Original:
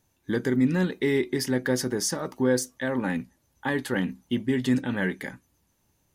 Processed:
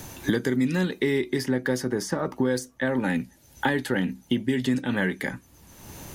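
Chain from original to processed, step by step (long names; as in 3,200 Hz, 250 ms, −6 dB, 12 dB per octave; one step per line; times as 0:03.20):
0:02.90–0:04.69: notch filter 1,100 Hz, Q 5.8
multiband upward and downward compressor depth 100%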